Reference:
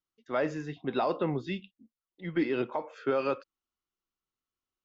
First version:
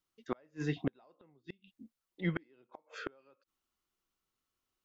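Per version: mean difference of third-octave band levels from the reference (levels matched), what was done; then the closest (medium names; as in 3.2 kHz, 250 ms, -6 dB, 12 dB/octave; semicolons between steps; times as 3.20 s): 12.5 dB: inverted gate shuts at -25 dBFS, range -40 dB; trim +5 dB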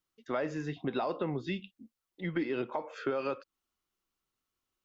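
2.0 dB: compression 3:1, threshold -38 dBFS, peak gain reduction 11 dB; trim +5.5 dB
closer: second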